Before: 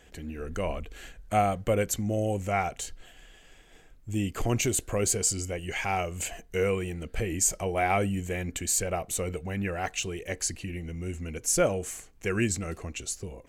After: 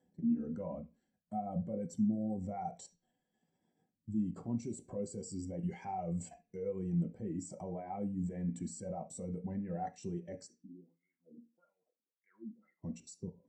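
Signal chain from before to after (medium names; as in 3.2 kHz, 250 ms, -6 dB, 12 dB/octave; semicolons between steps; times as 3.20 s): Chebyshev low-pass 7.8 kHz, order 2; level held to a coarse grid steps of 20 dB; 10.46–12.81 s: wah-wah 1.1 Hz -> 2.5 Hz 240–2100 Hz, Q 7.3; reverberation RT60 0.40 s, pre-delay 3 ms, DRR 3 dB; spectral contrast expander 1.5:1; trim -6 dB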